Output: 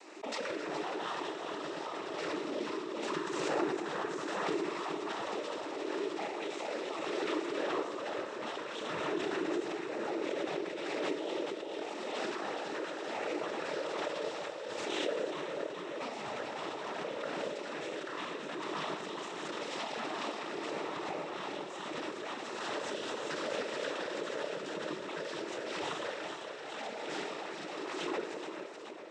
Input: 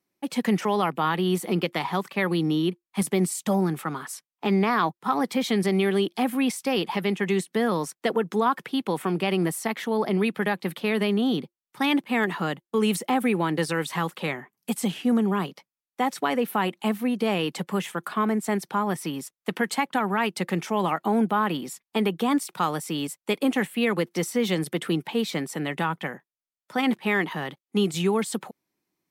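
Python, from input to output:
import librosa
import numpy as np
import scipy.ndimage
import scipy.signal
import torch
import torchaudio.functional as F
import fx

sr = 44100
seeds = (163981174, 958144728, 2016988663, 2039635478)

p1 = fx.tracing_dist(x, sr, depth_ms=0.17)
p2 = scipy.signal.sosfilt(scipy.signal.cheby1(6, 1.0, 350.0, 'highpass', fs=sr, output='sos'), p1)
p3 = fx.high_shelf(p2, sr, hz=2000.0, db=-9.5)
p4 = fx.rider(p3, sr, range_db=10, speed_s=0.5)
p5 = 10.0 ** (-25.5 / 20.0) * (np.abs((p4 / 10.0 ** (-25.5 / 20.0) + 3.0) % 4.0 - 2.0) - 1.0)
p6 = fx.tremolo_random(p5, sr, seeds[0], hz=3.5, depth_pct=55)
p7 = p6 + fx.echo_feedback(p6, sr, ms=422, feedback_pct=52, wet_db=-5.0, dry=0)
p8 = fx.rev_schroeder(p7, sr, rt60_s=1.4, comb_ms=25, drr_db=0.5)
p9 = fx.noise_vocoder(p8, sr, seeds[1], bands=12)
p10 = fx.pre_swell(p9, sr, db_per_s=21.0)
y = F.gain(torch.from_numpy(p10), -7.0).numpy()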